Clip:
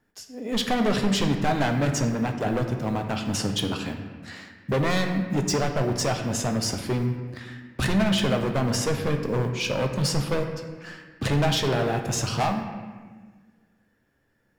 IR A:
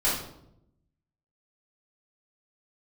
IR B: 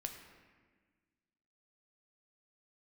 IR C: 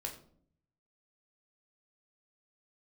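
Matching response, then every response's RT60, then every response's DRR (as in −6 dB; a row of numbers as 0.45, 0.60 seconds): B; 0.80, 1.5, 0.60 seconds; −10.0, 4.0, 1.5 decibels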